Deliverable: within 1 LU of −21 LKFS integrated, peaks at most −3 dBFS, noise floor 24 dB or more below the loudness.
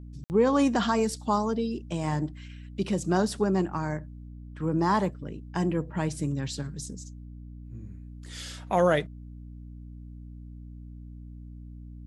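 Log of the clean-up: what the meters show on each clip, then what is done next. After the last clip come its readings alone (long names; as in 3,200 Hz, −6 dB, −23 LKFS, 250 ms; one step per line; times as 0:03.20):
number of dropouts 1; longest dropout 59 ms; mains hum 60 Hz; hum harmonics up to 300 Hz; level of the hum −40 dBFS; integrated loudness −28.0 LKFS; sample peak −10.5 dBFS; target loudness −21.0 LKFS
→ repair the gap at 0:00.24, 59 ms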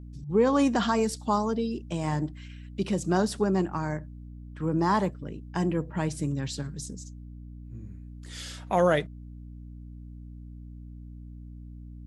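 number of dropouts 0; mains hum 60 Hz; hum harmonics up to 300 Hz; level of the hum −40 dBFS
→ hum removal 60 Hz, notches 5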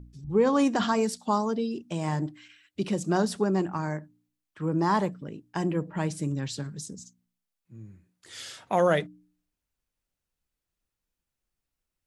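mains hum none found; integrated loudness −28.0 LKFS; sample peak −11.0 dBFS; target loudness −21.0 LKFS
→ level +7 dB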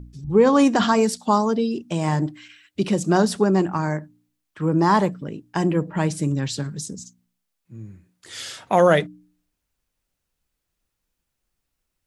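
integrated loudness −21.0 LKFS; sample peak −4.0 dBFS; background noise floor −79 dBFS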